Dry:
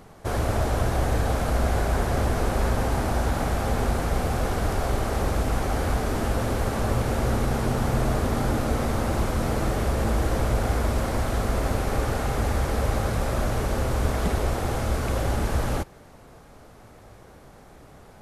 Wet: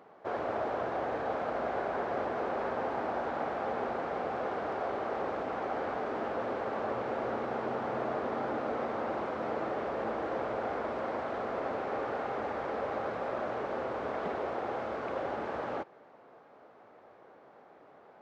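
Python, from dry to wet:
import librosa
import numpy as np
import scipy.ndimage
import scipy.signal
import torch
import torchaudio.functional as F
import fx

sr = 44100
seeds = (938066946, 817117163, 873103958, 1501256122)

y = scipy.signal.sosfilt(scipy.signal.butter(2, 450.0, 'highpass', fs=sr, output='sos'), x)
y = fx.spacing_loss(y, sr, db_at_10k=42)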